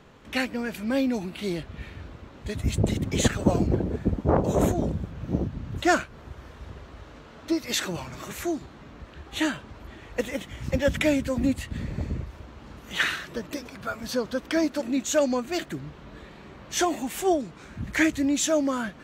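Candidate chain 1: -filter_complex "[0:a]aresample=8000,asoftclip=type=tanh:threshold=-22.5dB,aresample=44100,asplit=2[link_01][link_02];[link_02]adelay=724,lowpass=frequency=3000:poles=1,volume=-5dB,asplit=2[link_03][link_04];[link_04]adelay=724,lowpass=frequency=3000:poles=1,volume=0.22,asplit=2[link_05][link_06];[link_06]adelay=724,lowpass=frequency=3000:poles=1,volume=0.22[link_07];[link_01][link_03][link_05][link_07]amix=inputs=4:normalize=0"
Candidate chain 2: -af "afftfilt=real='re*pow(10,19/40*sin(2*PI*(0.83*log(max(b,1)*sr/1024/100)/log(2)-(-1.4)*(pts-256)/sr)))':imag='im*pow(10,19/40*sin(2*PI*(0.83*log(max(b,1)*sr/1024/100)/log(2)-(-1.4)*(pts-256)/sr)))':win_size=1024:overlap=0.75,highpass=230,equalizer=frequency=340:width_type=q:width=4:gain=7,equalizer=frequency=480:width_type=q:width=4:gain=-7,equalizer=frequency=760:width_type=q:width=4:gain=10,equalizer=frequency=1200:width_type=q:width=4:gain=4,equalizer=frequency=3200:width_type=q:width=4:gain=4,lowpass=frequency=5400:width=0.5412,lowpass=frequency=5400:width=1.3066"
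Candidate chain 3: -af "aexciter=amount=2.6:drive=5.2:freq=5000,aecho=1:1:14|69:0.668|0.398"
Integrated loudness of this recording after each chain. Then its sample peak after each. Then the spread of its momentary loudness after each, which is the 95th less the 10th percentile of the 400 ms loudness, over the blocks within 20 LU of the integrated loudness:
−30.5, −23.0, −24.0 LKFS; −17.5, −1.0, −2.5 dBFS; 10, 22, 22 LU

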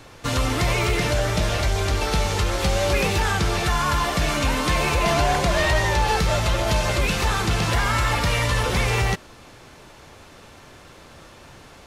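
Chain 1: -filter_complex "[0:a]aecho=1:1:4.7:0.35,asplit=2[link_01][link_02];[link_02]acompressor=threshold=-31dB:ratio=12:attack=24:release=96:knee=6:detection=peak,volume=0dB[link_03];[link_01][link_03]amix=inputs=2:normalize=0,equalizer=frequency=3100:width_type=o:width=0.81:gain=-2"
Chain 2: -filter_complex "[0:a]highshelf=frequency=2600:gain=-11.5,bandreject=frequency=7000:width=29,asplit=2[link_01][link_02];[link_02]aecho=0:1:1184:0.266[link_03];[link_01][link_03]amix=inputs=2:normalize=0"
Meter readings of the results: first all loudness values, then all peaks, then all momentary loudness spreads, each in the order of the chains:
−19.5, −23.0 LKFS; −6.5, −9.5 dBFS; 3, 12 LU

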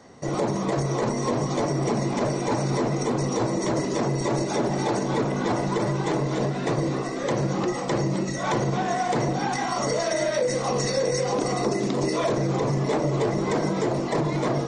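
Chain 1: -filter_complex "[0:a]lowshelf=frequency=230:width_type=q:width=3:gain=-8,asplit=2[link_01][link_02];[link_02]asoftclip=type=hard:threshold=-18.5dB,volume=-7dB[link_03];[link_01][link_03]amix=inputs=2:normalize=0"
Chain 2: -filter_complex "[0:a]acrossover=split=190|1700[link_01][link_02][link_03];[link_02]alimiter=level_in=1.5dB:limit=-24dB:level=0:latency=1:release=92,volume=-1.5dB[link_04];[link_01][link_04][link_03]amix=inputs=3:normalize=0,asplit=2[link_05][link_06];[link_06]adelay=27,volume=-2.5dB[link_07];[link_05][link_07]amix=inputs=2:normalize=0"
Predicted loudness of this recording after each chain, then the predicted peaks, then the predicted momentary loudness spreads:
−20.5, −27.0 LKFS; −8.0, −13.5 dBFS; 2, 2 LU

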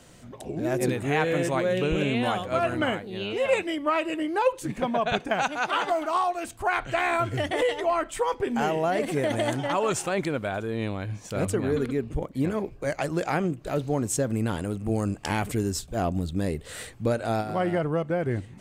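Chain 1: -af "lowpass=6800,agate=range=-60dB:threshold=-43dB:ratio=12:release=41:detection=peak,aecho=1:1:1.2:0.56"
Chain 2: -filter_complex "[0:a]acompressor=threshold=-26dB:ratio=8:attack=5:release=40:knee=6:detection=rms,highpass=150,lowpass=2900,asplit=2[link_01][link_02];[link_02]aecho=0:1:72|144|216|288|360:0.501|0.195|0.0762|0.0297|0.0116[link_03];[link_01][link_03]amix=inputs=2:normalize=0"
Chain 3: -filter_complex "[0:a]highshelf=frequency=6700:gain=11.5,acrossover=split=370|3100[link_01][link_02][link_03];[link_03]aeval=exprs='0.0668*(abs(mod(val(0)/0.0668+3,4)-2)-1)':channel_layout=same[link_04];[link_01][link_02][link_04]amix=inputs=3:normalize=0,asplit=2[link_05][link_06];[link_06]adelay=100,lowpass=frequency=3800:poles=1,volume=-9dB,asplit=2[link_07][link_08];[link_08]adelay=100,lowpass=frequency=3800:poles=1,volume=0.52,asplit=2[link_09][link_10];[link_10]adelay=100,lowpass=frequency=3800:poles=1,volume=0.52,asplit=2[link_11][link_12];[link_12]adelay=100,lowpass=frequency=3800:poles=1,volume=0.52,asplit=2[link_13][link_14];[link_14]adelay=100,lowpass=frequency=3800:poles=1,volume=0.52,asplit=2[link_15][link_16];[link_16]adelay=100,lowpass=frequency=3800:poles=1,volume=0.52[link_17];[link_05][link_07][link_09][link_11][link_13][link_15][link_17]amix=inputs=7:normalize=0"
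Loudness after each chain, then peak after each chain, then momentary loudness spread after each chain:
−26.5, −31.0, −26.0 LKFS; −7.5, −15.5, −10.0 dBFS; 6, 5, 5 LU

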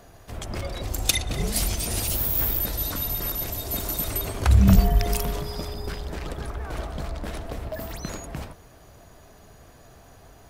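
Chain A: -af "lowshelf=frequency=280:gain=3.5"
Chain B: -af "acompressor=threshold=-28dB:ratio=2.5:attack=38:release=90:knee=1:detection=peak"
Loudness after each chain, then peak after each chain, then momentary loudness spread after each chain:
−24.0, −29.0 LKFS; −2.5, −6.5 dBFS; 16, 10 LU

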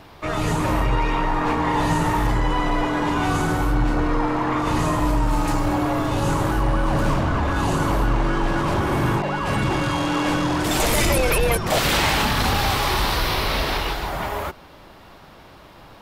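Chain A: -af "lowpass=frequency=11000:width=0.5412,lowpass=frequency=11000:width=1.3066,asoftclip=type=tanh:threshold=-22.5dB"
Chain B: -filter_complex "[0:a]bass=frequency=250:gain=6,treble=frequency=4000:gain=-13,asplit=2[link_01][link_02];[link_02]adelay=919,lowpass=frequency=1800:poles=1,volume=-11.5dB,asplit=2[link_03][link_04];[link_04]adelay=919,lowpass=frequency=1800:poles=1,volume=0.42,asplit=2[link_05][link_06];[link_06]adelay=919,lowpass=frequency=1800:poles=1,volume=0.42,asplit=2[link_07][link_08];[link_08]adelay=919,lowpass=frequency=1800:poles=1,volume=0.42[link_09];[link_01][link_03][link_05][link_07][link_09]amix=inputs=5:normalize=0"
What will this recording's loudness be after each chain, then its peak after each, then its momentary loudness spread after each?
−26.5, −19.0 LKFS; −22.5, −5.5 dBFS; 5, 7 LU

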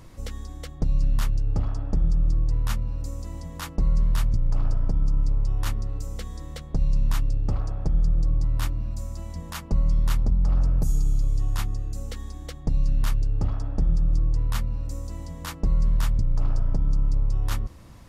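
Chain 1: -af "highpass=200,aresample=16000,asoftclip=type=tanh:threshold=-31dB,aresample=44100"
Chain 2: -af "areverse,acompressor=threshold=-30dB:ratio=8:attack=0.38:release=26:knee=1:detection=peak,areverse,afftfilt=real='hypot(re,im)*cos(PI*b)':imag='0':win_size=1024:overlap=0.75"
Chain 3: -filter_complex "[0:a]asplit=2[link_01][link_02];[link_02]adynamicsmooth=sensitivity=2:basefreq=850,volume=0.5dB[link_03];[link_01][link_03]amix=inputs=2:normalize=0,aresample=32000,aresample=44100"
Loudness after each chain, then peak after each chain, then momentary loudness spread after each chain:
−41.5, −47.5, −21.0 LKFS; −29.0, −18.5, −7.0 dBFS; 5, 7, 12 LU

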